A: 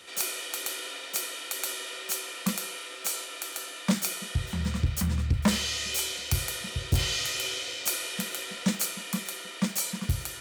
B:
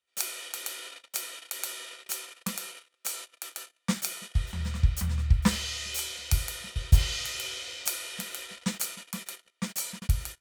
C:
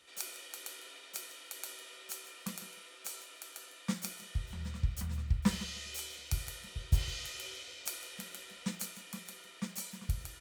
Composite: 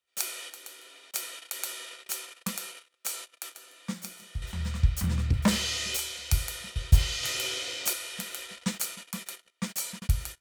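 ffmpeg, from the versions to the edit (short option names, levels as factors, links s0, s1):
-filter_complex "[2:a]asplit=2[s0][s1];[0:a]asplit=2[s2][s3];[1:a]asplit=5[s4][s5][s6][s7][s8];[s4]atrim=end=0.502[s9];[s0]atrim=start=0.498:end=1.112[s10];[s5]atrim=start=1.108:end=3.552[s11];[s1]atrim=start=3.548:end=4.422[s12];[s6]atrim=start=4.418:end=5.042[s13];[s2]atrim=start=5.038:end=5.972[s14];[s7]atrim=start=5.968:end=7.232[s15];[s3]atrim=start=7.228:end=7.932[s16];[s8]atrim=start=7.928[s17];[s9][s10]acrossfade=d=0.004:c1=hsin:c2=hsin[s18];[s18][s11]acrossfade=d=0.004:c1=hsin:c2=hsin[s19];[s19][s12]acrossfade=d=0.004:c1=hsin:c2=hsin[s20];[s20][s13]acrossfade=d=0.004:c1=hsin:c2=hsin[s21];[s21][s14]acrossfade=d=0.004:c1=hsin:c2=hsin[s22];[s22][s15]acrossfade=d=0.004:c1=hsin:c2=hsin[s23];[s23][s16]acrossfade=d=0.004:c1=hsin:c2=hsin[s24];[s24][s17]acrossfade=d=0.004:c1=hsin:c2=hsin"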